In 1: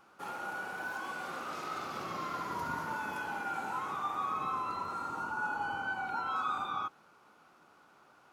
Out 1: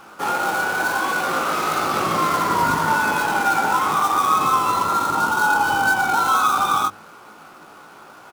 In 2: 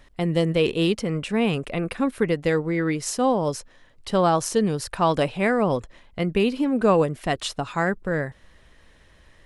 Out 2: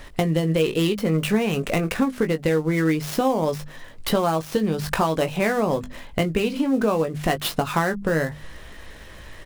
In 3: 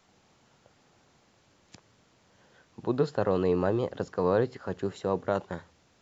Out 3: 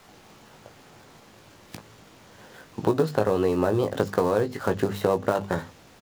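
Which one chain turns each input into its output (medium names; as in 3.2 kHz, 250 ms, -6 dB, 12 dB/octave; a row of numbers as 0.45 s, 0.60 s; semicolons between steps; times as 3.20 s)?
dead-time distortion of 0.059 ms; hum notches 50/100/150/200/250 Hz; compression 10:1, threshold -31 dBFS; doubling 19 ms -7.5 dB; peak normalisation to -6 dBFS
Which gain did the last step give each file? +18.0 dB, +12.0 dB, +12.5 dB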